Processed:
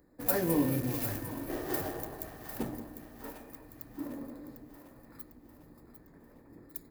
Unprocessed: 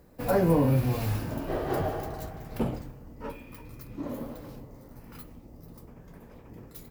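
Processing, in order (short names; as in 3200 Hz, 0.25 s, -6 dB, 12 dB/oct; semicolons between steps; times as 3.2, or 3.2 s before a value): Wiener smoothing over 15 samples; pre-emphasis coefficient 0.9; small resonant body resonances 300/1800 Hz, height 10 dB, ringing for 30 ms; on a send: split-band echo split 610 Hz, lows 0.18 s, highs 0.75 s, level -9.5 dB; on the sum: gain +8 dB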